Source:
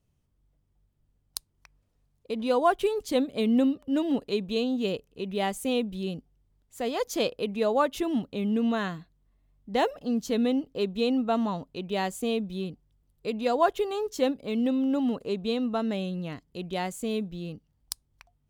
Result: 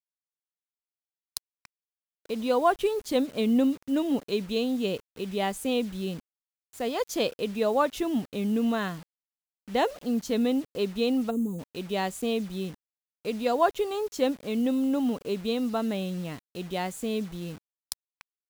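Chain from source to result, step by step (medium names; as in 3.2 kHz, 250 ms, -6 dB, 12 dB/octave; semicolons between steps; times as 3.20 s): bit crusher 8-bit; time-frequency box 11.30–11.59 s, 530–6200 Hz -25 dB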